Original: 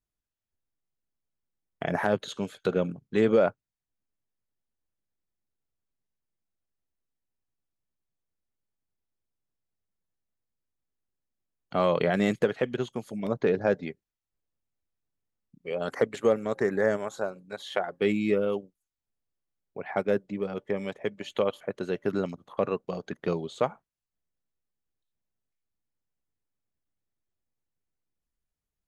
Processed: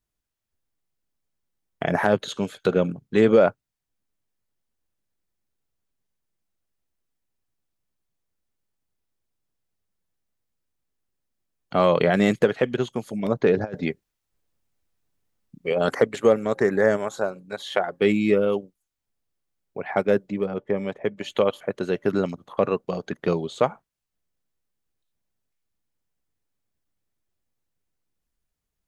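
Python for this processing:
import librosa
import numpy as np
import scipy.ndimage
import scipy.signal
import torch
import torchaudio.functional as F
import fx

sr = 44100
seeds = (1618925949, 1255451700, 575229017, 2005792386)

y = fx.over_compress(x, sr, threshold_db=-30.0, ratio=-0.5, at=(13.56, 15.95), fade=0.02)
y = fx.high_shelf(y, sr, hz=fx.line((20.44, 2400.0), (21.16, 3600.0)), db=-11.5, at=(20.44, 21.16), fade=0.02)
y = F.gain(torch.from_numpy(y), 5.5).numpy()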